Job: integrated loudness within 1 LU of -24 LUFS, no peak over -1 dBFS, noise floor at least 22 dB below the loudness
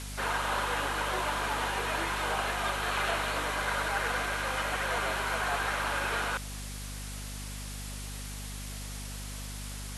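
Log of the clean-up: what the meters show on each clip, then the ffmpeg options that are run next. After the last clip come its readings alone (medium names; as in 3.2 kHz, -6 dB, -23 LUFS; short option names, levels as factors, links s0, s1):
hum 50 Hz; highest harmonic 250 Hz; hum level -38 dBFS; noise floor -40 dBFS; noise floor target -54 dBFS; loudness -32.0 LUFS; peak level -18.0 dBFS; loudness target -24.0 LUFS
-> -af "bandreject=f=50:t=h:w=6,bandreject=f=100:t=h:w=6,bandreject=f=150:t=h:w=6,bandreject=f=200:t=h:w=6,bandreject=f=250:t=h:w=6"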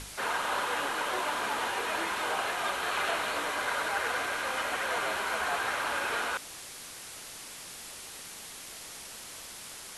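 hum not found; noise floor -45 dBFS; noise floor target -54 dBFS
-> -af "afftdn=nr=9:nf=-45"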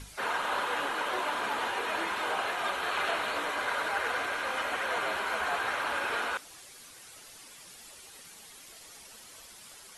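noise floor -51 dBFS; noise floor target -53 dBFS
-> -af "afftdn=nr=6:nf=-51"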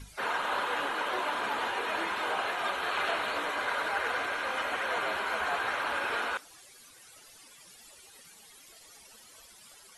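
noise floor -55 dBFS; loudness -31.0 LUFS; peak level -18.5 dBFS; loudness target -24.0 LUFS
-> -af "volume=2.24"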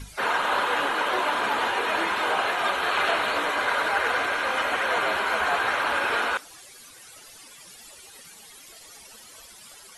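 loudness -24.0 LUFS; peak level -11.0 dBFS; noise floor -48 dBFS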